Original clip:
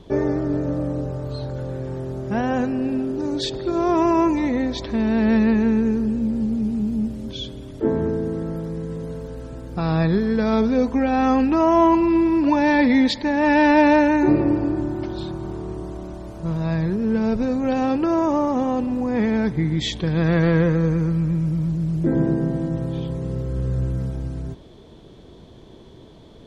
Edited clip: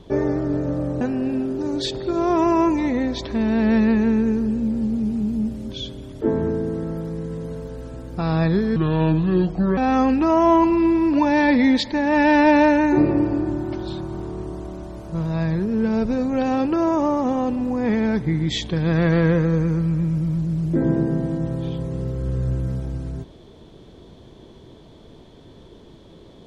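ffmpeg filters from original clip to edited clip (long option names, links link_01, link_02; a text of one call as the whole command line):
ffmpeg -i in.wav -filter_complex "[0:a]asplit=4[link_01][link_02][link_03][link_04];[link_01]atrim=end=1.012[link_05];[link_02]atrim=start=2.598:end=10.354[link_06];[link_03]atrim=start=10.35:end=11.08,asetpts=PTS-STARTPTS,asetrate=31752,aresample=44100,atrim=end_sample=44712,asetpts=PTS-STARTPTS[link_07];[link_04]atrim=start=11.076[link_08];[link_05][link_06]acrossfade=duration=0.004:curve1=hsin:curve2=hsin[link_09];[link_09][link_07]acrossfade=duration=0.004:curve1=hsin:curve2=hsin[link_10];[link_10][link_08]acrossfade=duration=0.004:curve1=hsin:curve2=hsin" out.wav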